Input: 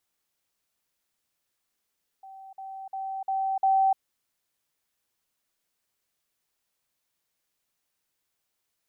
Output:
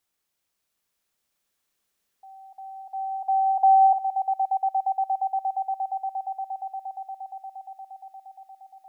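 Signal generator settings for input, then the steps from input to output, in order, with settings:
level ladder 772 Hz -42.5 dBFS, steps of 6 dB, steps 5, 0.30 s 0.05 s
dynamic EQ 710 Hz, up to +6 dB, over -36 dBFS, Q 0.74; swelling echo 0.117 s, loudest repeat 8, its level -11 dB

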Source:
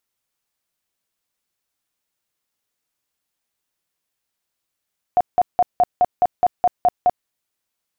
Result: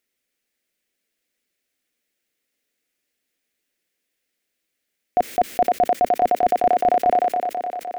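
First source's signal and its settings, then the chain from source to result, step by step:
tone bursts 719 Hz, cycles 26, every 0.21 s, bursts 10, -10.5 dBFS
graphic EQ 125/250/500/1000/2000 Hz -8/+8/+7/-12/+9 dB; on a send: thinning echo 0.512 s, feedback 73%, high-pass 300 Hz, level -9 dB; on the sum: sustainer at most 21 dB/s

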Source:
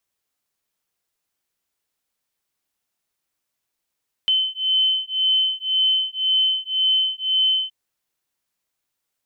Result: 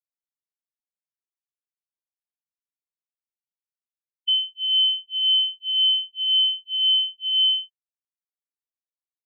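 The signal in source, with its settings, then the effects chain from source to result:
beating tones 3060 Hz, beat 1.9 Hz, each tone -20.5 dBFS 3.42 s
treble ducked by the level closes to 2800 Hz, closed at -20 dBFS; spectral expander 2.5:1

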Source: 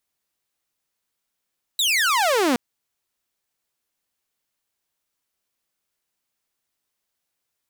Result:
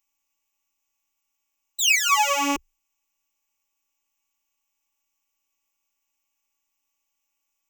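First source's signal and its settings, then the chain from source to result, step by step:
laser zap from 4000 Hz, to 230 Hz, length 0.77 s saw, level -14.5 dB
bell 80 Hz +6 dB 0.45 oct; robotiser 282 Hz; ripple EQ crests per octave 0.74, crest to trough 15 dB

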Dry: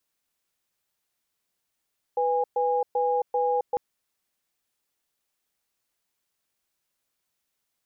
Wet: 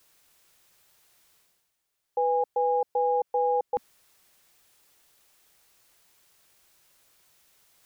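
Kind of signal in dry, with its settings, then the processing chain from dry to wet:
cadence 495 Hz, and 820 Hz, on 0.27 s, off 0.12 s, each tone -24 dBFS 1.60 s
bell 240 Hz -7.5 dB 0.36 oct; reverse; upward compressor, threshold -48 dBFS; reverse

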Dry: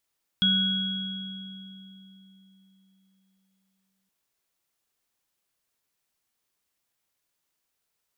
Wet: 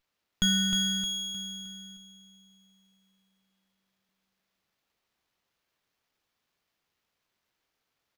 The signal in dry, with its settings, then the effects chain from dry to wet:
sine partials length 3.67 s, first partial 192 Hz, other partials 1480/3320 Hz, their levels -8.5/5 dB, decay 4.08 s, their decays 2.42/2.73 s, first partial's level -24 dB
feedback echo 0.309 s, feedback 44%, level -5.5 dB; running maximum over 5 samples

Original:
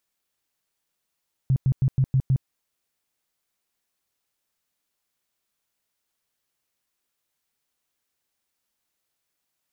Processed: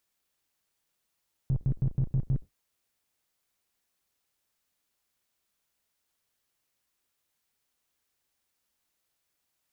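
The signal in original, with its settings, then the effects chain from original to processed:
tone bursts 132 Hz, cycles 8, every 0.16 s, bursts 6, -16 dBFS
octaver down 2 oct, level -5 dB; limiter -20.5 dBFS

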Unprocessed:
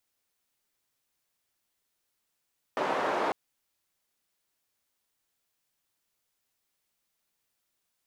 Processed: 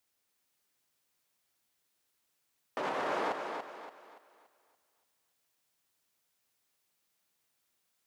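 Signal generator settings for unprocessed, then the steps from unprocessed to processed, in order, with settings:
noise band 430–840 Hz, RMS -29 dBFS 0.55 s
HPF 64 Hz; limiter -25.5 dBFS; thinning echo 0.286 s, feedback 39%, high-pass 160 Hz, level -5.5 dB

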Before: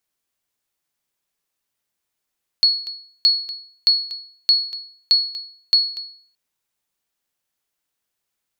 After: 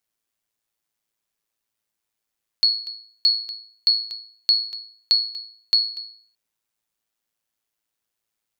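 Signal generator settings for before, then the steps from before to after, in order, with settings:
sonar ping 4360 Hz, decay 0.52 s, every 0.62 s, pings 6, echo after 0.24 s, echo -14.5 dB -7.5 dBFS
AM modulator 110 Hz, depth 35%

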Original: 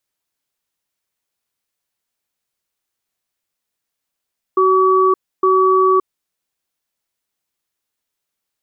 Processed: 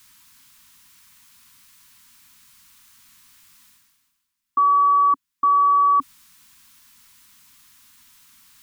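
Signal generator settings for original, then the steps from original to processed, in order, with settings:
cadence 376 Hz, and 1140 Hz, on 0.57 s, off 0.29 s, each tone -12.5 dBFS 1.68 s
elliptic band-stop 270–970 Hz, stop band 40 dB; reverse; upward compressor, threshold -31 dBFS; reverse

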